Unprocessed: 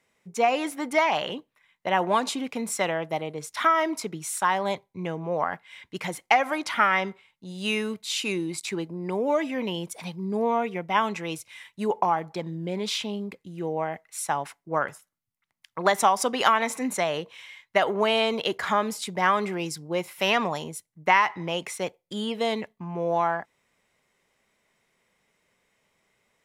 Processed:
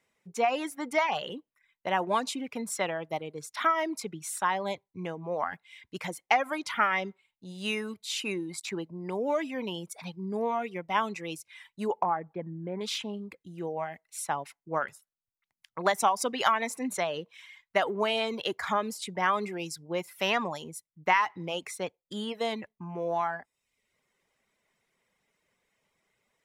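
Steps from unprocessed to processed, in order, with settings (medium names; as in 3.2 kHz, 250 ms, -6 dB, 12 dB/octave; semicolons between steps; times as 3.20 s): reverb removal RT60 0.64 s; 12.03–12.81 s: low-pass 1.9 kHz 24 dB/octave; trim -4 dB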